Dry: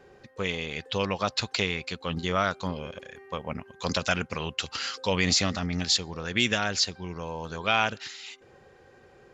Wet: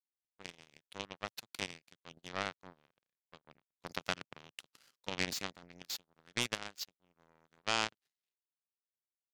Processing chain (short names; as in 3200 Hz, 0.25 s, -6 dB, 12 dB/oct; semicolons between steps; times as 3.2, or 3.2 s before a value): power-law curve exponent 3; resonant low shelf 100 Hz -6.5 dB, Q 1.5; gain -2.5 dB